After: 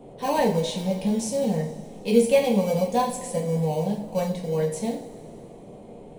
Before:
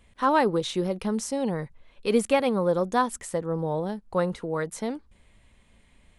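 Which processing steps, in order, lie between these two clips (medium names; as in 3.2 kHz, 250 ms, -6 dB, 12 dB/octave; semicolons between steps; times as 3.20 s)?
in parallel at -12 dB: sample-and-hold 25×; on the sum: static phaser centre 350 Hz, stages 6; band noise 91–630 Hz -46 dBFS; two-slope reverb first 0.4 s, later 2.8 s, from -18 dB, DRR -2 dB; trim -1.5 dB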